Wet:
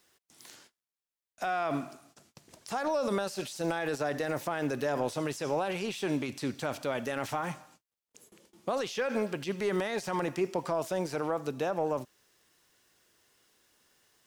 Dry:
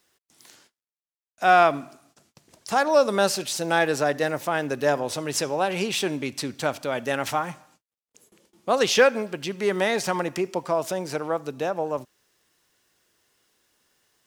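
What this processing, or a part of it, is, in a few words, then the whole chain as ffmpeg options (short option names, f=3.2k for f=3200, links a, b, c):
de-esser from a sidechain: -filter_complex "[0:a]asplit=2[a][b];[b]highpass=f=6.4k:p=1,apad=whole_len=629244[c];[a][c]sidechaincompress=threshold=-45dB:ratio=6:attack=3.2:release=24"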